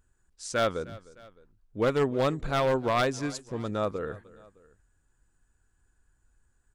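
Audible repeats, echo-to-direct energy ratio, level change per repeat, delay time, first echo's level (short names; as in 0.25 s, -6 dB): 2, -19.5 dB, -5.0 dB, 0.306 s, -20.5 dB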